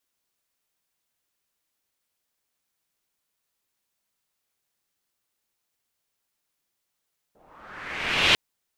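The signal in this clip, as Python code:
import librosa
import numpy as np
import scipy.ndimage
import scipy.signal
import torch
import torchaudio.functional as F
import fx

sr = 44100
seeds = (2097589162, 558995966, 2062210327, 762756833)

y = fx.riser_noise(sr, seeds[0], length_s=1.0, colour='white', kind='lowpass', start_hz=540.0, end_hz=3100.0, q=2.6, swell_db=37, law='linear')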